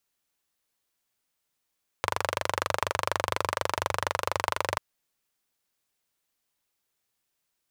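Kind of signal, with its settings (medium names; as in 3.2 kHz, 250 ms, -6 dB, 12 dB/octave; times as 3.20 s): single-cylinder engine model, steady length 2.74 s, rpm 2900, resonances 95/570/960 Hz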